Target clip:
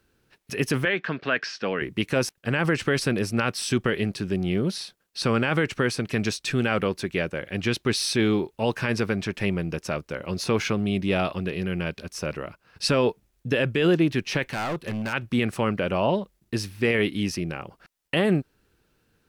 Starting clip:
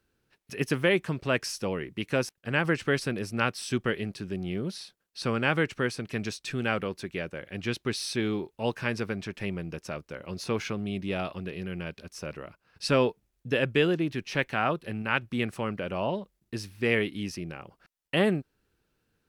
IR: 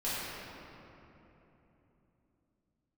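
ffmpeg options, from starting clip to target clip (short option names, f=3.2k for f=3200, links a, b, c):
-filter_complex "[0:a]alimiter=limit=-19.5dB:level=0:latency=1:release=29,asettb=1/sr,asplit=3[a][b][c];[a]atrim=end=0.854[d];[b]atrim=start=0.85:end=1.82,asetpts=PTS-STARTPTS,afade=t=in:d=0.004:c=qsin,afade=t=out:st=0.966:d=0.004:c=qsin,highpass=260,equalizer=f=350:t=q:w=4:g=-6,equalizer=f=540:t=q:w=4:g=-4,equalizer=f=920:t=q:w=4:g=-5,equalizer=f=1.6k:t=q:w=4:g=8,lowpass=f=4.3k:w=0.5412,lowpass=f=4.3k:w=1.3066[e];[c]atrim=start=1.816[f];[d][e]acrossfade=d=0.004:c1=hsin:c2=qsin[g];[g][f]acrossfade=d=0.004:c1=qsin:c2=hsin,asplit=3[h][i][j];[h]afade=t=out:st=14.51:d=0.02[k];[i]volume=33dB,asoftclip=hard,volume=-33dB,afade=t=in:st=14.51:d=0.02,afade=t=out:st=15.12:d=0.02[l];[j]afade=t=in:st=15.12:d=0.02[m];[k][l][m]amix=inputs=3:normalize=0,volume=7.5dB"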